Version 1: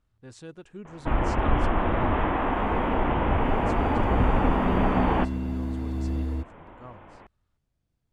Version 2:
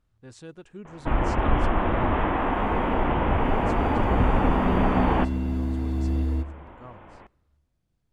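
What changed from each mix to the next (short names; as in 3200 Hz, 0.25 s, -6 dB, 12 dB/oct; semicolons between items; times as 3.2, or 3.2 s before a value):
reverb: on, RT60 1.2 s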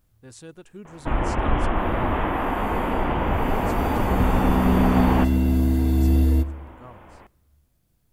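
second sound +7.0 dB; master: remove air absorption 70 m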